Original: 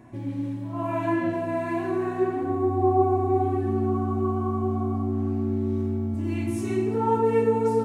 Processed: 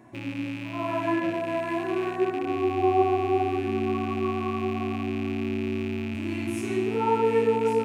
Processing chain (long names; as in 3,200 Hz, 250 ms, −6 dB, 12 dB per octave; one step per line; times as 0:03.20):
loose part that buzzes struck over −34 dBFS, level −28 dBFS
low-shelf EQ 110 Hz −11.5 dB
mains-hum notches 50/100/150/200/250 Hz